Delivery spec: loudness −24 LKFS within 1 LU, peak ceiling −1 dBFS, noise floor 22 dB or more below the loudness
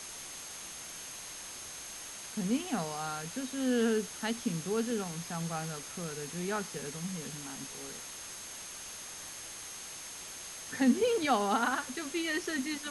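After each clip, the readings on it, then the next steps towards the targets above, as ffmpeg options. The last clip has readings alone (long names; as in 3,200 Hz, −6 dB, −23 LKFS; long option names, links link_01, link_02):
interfering tone 6,400 Hz; level of the tone −47 dBFS; background noise floor −45 dBFS; target noise floor −57 dBFS; integrated loudness −35.0 LKFS; sample peak −16.0 dBFS; target loudness −24.0 LKFS
→ -af "bandreject=frequency=6400:width=30"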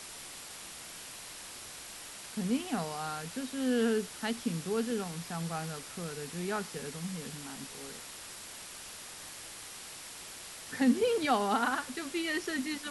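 interfering tone none found; background noise floor −47 dBFS; target noise floor −57 dBFS
→ -af "afftdn=noise_reduction=10:noise_floor=-47"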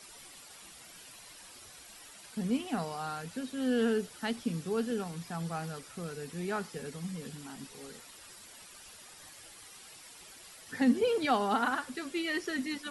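background noise floor −52 dBFS; target noise floor −56 dBFS
→ -af "afftdn=noise_reduction=6:noise_floor=-52"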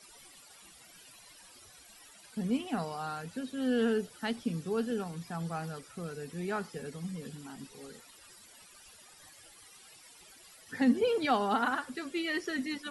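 background noise floor −56 dBFS; integrated loudness −33.5 LKFS; sample peak −16.5 dBFS; target loudness −24.0 LKFS
→ -af "volume=9.5dB"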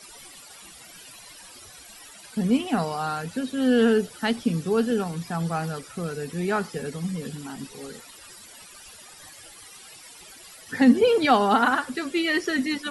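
integrated loudness −24.0 LKFS; sample peak −7.0 dBFS; background noise floor −47 dBFS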